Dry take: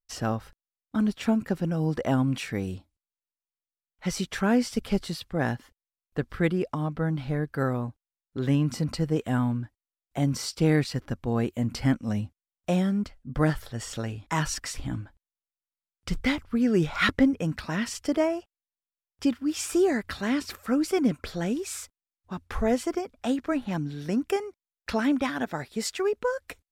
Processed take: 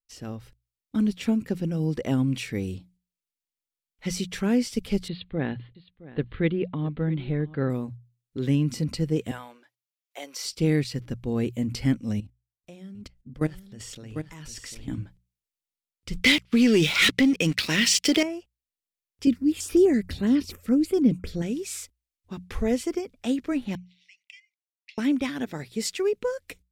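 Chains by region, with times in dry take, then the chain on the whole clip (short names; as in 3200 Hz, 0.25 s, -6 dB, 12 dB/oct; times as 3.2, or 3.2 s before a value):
5.08–7.7 steep low-pass 4100 Hz 72 dB/oct + echo 0.666 s -18.5 dB
9.31–10.45 HPF 530 Hz 24 dB/oct + bell 8400 Hz -5.5 dB 0.33 oct
12.2–14.88 level quantiser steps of 21 dB + echo 0.748 s -8 dB
16.22–18.23 weighting filter D + sample leveller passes 3 + compressor 2.5:1, threshold -13 dBFS
19.27–21.42 low shelf 350 Hz +9.5 dB + stepped notch 12 Hz 910–7700 Hz
23.75–24.98 rippled Chebyshev high-pass 2000 Hz, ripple 3 dB + tape spacing loss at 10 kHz 30 dB
whole clip: AGC gain up to 10 dB; band shelf 1000 Hz -8.5 dB; notches 60/120/180 Hz; gain -8 dB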